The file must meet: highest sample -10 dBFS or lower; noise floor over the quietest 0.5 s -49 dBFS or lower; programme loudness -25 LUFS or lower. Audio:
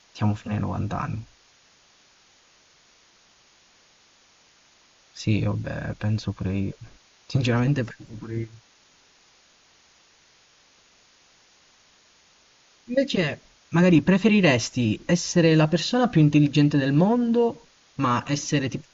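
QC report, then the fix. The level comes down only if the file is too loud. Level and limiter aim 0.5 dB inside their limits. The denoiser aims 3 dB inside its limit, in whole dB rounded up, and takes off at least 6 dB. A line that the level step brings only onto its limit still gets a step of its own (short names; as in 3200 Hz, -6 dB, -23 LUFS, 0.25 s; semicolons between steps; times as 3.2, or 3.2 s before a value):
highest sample -6.5 dBFS: fail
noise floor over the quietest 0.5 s -58 dBFS: OK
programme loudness -23.0 LUFS: fail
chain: gain -2.5 dB; limiter -10.5 dBFS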